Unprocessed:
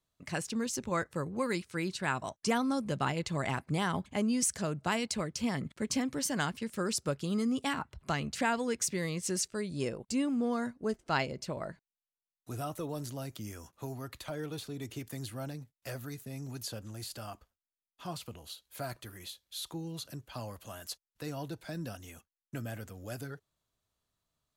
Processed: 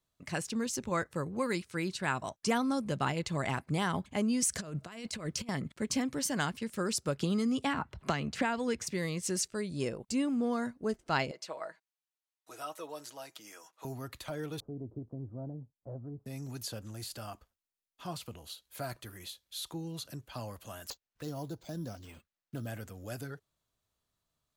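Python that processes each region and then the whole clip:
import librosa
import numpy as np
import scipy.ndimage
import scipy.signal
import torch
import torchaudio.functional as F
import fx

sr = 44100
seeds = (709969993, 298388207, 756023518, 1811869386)

y = fx.chain(x, sr, fx.notch(hz=860.0, q=9.9),
    fx.over_compress(threshold_db=-38.0, ratio=-0.5), at=(4.52, 5.49))
y = fx.chain(y, sr, fx.high_shelf(hz=6000.0, db=-9.0),
    fx.band_squash(depth_pct=100), at=(7.19, 8.87))
y = fx.chain(y, sr, fx.highpass(hz=620.0, slope=12),
    fx.high_shelf(hz=11000.0, db=-10.0),
    fx.comb(ms=6.3, depth=0.48), at=(11.31, 13.85))
y = fx.chain(y, sr, fx.bessel_lowpass(hz=550.0, order=8),
    fx.doppler_dist(depth_ms=0.14), at=(14.6, 16.26))
y = fx.chain(y, sr, fx.env_phaser(low_hz=520.0, high_hz=2400.0, full_db=-38.0),
    fx.resample_bad(factor=4, down='none', up='hold'), at=(20.9, 22.67))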